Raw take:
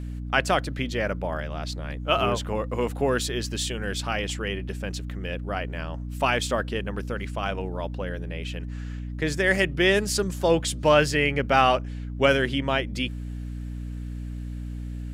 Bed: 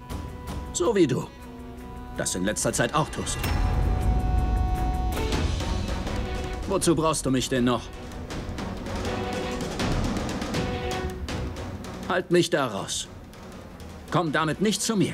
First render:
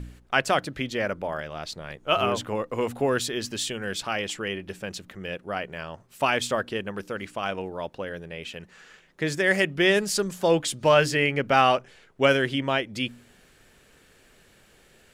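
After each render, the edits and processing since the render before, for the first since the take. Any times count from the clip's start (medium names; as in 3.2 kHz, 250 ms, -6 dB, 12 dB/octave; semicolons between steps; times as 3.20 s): de-hum 60 Hz, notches 5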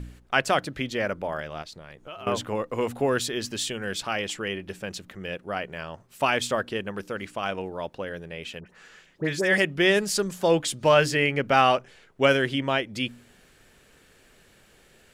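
1.62–2.27 s: compression 4:1, threshold -40 dBFS; 8.60–9.58 s: phase dispersion highs, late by 64 ms, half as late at 1.5 kHz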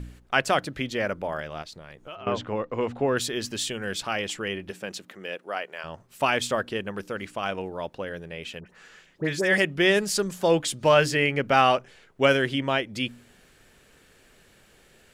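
2.15–3.17 s: distance through air 140 m; 4.70–5.83 s: high-pass 150 Hz -> 560 Hz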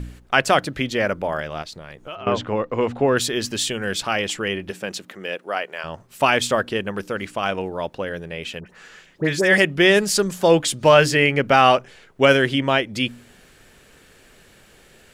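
trim +6 dB; peak limiter -2 dBFS, peak gain reduction 2 dB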